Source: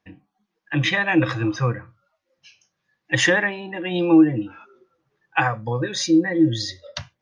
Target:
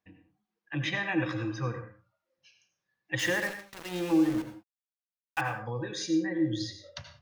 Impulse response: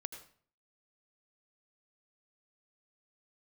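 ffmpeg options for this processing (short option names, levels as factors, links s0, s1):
-filter_complex "[0:a]asettb=1/sr,asplit=3[s0][s1][s2];[s0]atrim=end=3.194[s3];[s1]atrim=start=3.19:end=5.41,asetpts=PTS-STARTPTS,afade=t=in:d=0.004:c=qsin,afade=t=out:st=2.216:d=0.004:c=qsin,aeval=exprs='val(0)*gte(abs(val(0)),0.0596)':c=same[s4];[s2]atrim=start=5.406[s5];[s3][s4]acrossfade=d=0.004:c1=hsin:c2=qsin[s6];[s6][s5]acrossfade=d=0.004:c1=qsin:c2=hsin[s7];[1:a]atrim=start_sample=2205,afade=t=out:st=0.26:d=0.01,atrim=end_sample=11907[s8];[s7][s8]afir=irnorm=-1:irlink=0,volume=0.398"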